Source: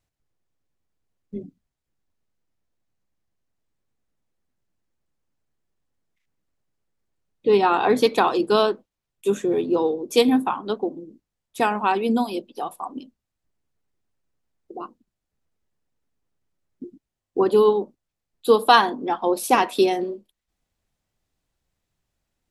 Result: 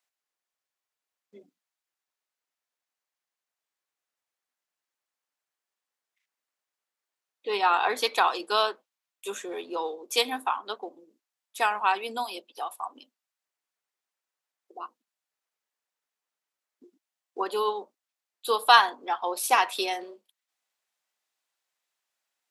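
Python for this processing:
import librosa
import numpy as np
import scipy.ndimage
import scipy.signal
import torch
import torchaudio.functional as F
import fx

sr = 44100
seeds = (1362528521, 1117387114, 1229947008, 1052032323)

y = scipy.signal.sosfilt(scipy.signal.butter(2, 890.0, 'highpass', fs=sr, output='sos'), x)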